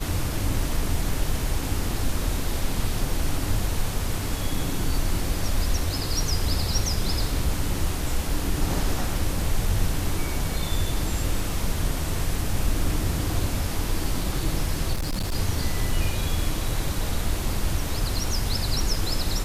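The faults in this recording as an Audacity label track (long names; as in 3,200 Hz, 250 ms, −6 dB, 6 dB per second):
14.930000	15.350000	clipping −23 dBFS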